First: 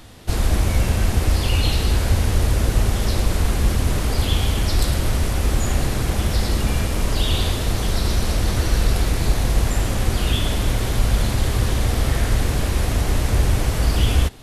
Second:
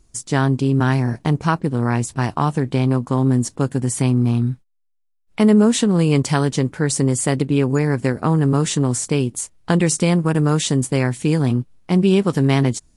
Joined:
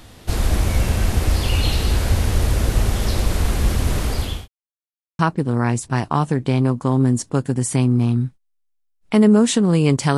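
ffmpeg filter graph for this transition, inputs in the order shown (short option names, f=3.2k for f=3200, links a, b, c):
-filter_complex "[0:a]apad=whole_dur=10.17,atrim=end=10.17,asplit=2[a][b];[a]atrim=end=4.48,asetpts=PTS-STARTPTS,afade=t=out:st=3.94:d=0.54:c=qsin[c];[b]atrim=start=4.48:end=5.19,asetpts=PTS-STARTPTS,volume=0[d];[1:a]atrim=start=1.45:end=6.43,asetpts=PTS-STARTPTS,afade=t=in:d=0.004:c=hsin[e];[c][d][e]concat=n=3:v=0:a=1"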